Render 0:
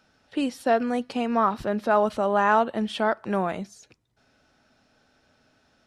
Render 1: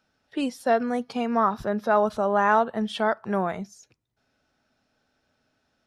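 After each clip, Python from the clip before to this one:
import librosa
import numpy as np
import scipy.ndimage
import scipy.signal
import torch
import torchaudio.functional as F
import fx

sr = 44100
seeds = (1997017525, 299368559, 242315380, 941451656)

y = fx.noise_reduce_blind(x, sr, reduce_db=8)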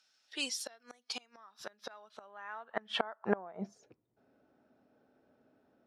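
y = fx.gate_flip(x, sr, shuts_db=-17.0, range_db=-27)
y = fx.filter_sweep_bandpass(y, sr, from_hz=5700.0, to_hz=370.0, start_s=1.64, end_s=4.0, q=1.1)
y = F.gain(torch.from_numpy(y), 8.0).numpy()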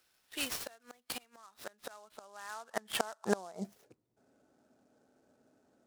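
y = fx.noise_mod_delay(x, sr, seeds[0], noise_hz=5800.0, depth_ms=0.04)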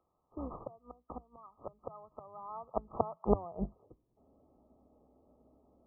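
y = fx.octave_divider(x, sr, octaves=2, level_db=-3.0)
y = fx.brickwall_lowpass(y, sr, high_hz=1300.0)
y = F.gain(torch.from_numpy(y), 3.0).numpy()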